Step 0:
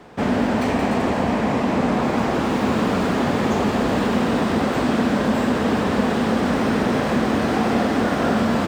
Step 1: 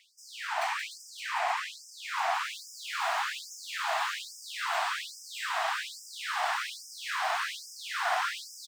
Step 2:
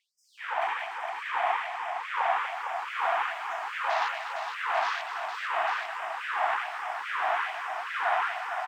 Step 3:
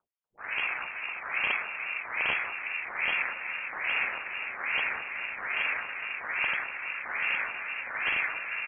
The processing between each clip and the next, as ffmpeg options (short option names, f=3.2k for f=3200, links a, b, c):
-af "aecho=1:1:570:0.531,afftfilt=real='re*gte(b*sr/1024,610*pow(5000/610,0.5+0.5*sin(2*PI*1.2*pts/sr)))':imag='im*gte(b*sr/1024,610*pow(5000/610,0.5+0.5*sin(2*PI*1.2*pts/sr)))':win_size=1024:overlap=0.75,volume=-3.5dB"
-filter_complex "[0:a]afwtdn=0.0126,lowshelf=f=490:g=9.5,asplit=2[a][b];[b]aecho=0:1:242|459|845:0.335|0.501|0.501[c];[a][c]amix=inputs=2:normalize=0"
-af "aeval=exprs='(mod(7.5*val(0)+1,2)-1)/7.5':c=same,aeval=exprs='val(0)*sin(2*PI*160*n/s)':c=same,lowpass=f=2.8k:t=q:w=0.5098,lowpass=f=2.8k:t=q:w=0.6013,lowpass=f=2.8k:t=q:w=0.9,lowpass=f=2.8k:t=q:w=2.563,afreqshift=-3300,volume=1.5dB"